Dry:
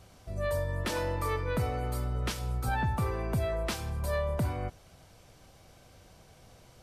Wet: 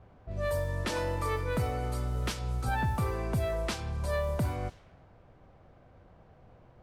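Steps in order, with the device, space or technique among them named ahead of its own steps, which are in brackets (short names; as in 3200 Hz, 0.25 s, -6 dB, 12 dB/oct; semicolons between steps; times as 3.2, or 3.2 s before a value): cassette deck with a dynamic noise filter (white noise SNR 25 dB; low-pass opened by the level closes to 990 Hz, open at -26.5 dBFS)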